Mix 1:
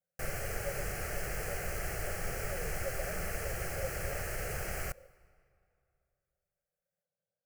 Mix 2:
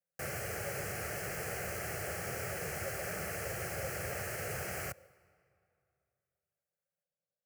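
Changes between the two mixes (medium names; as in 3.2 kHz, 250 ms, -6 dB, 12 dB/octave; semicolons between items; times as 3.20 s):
speech -4.5 dB; master: add high-pass 83 Hz 24 dB/octave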